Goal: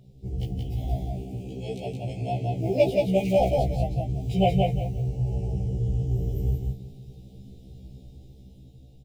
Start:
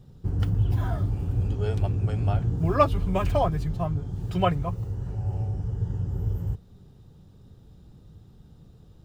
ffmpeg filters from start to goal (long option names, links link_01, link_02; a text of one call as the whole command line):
ffmpeg -i in.wav -filter_complex "[0:a]asettb=1/sr,asplit=3[link_01][link_02][link_03];[link_01]atrim=end=1.034[link_04];[link_02]atrim=start=1.03:end=3.41,asetpts=PTS-STARTPTS,afade=type=in:duration=0.004:curve=qsin,afade=type=out:start_time=2.376:duration=0.004:curve=qsin,highpass=150[link_05];[link_03]atrim=start=3.406[link_06];[link_04][link_05]acrossfade=duration=0.004:curve1=hsin:curve2=qsin[link_07];[link_07][link_06]acrossfade=duration=0.004:curve1=qsin:curve2=hsin,dynaudnorm=framelen=670:gausssize=5:maxgain=7dB,asuperstop=centerf=1300:order=12:qfactor=0.96,aecho=1:1:176|352|528:0.708|0.156|0.0343,afftfilt=real='re*1.73*eq(mod(b,3),0)':imag='im*1.73*eq(mod(b,3),0)':win_size=2048:overlap=0.75" out.wav